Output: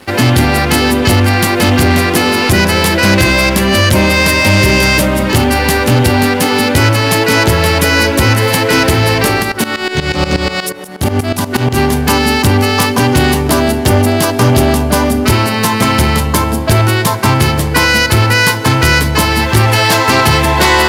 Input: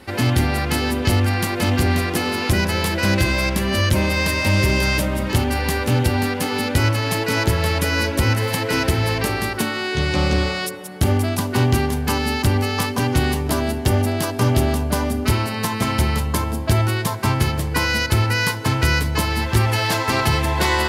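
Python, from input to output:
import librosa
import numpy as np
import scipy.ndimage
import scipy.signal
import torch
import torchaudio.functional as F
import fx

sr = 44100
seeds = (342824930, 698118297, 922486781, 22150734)

y = fx.highpass(x, sr, hz=110.0, slope=6)
y = fx.leveller(y, sr, passes=2)
y = fx.tremolo_shape(y, sr, shape='saw_up', hz=8.3, depth_pct=85, at=(9.42, 11.76), fade=0.02)
y = y * 10.0 ** (4.5 / 20.0)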